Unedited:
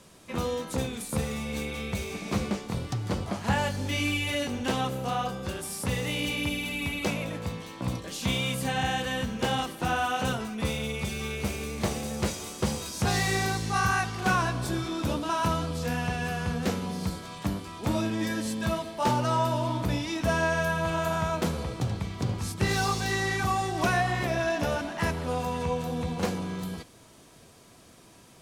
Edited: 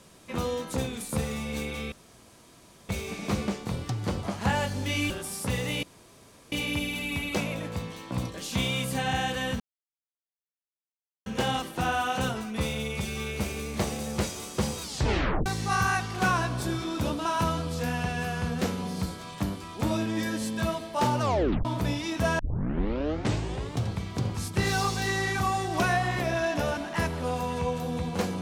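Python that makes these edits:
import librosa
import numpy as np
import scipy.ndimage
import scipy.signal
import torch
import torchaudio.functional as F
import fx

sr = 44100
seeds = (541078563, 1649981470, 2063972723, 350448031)

y = fx.edit(x, sr, fx.insert_room_tone(at_s=1.92, length_s=0.97),
    fx.cut(start_s=4.13, length_s=1.36),
    fx.insert_room_tone(at_s=6.22, length_s=0.69),
    fx.insert_silence(at_s=9.3, length_s=1.66),
    fx.tape_stop(start_s=12.86, length_s=0.64),
    fx.tape_stop(start_s=19.25, length_s=0.44),
    fx.tape_start(start_s=20.43, length_s=1.48), tone=tone)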